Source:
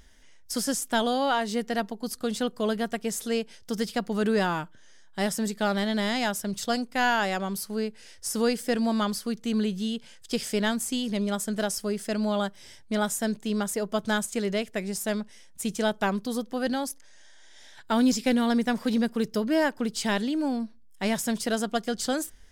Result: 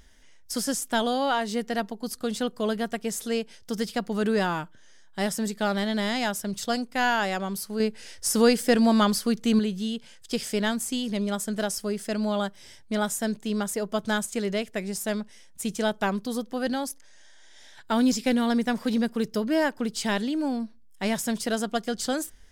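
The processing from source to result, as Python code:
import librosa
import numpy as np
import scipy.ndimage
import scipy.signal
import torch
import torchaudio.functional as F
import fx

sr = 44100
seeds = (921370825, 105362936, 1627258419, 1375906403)

y = fx.edit(x, sr, fx.clip_gain(start_s=7.8, length_s=1.79, db=5.5), tone=tone)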